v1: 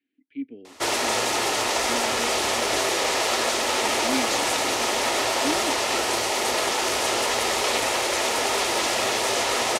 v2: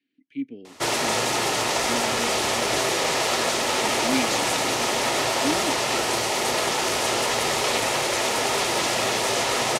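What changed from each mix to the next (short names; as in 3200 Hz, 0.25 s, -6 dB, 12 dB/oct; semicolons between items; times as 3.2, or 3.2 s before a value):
speech: remove air absorption 290 m; master: add bell 150 Hz +14 dB 0.6 oct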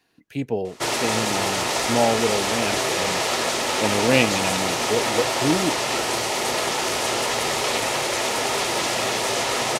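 speech: remove vowel filter i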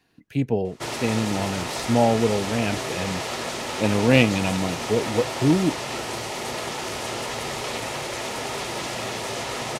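background -6.5 dB; master: add tone controls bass +7 dB, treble -2 dB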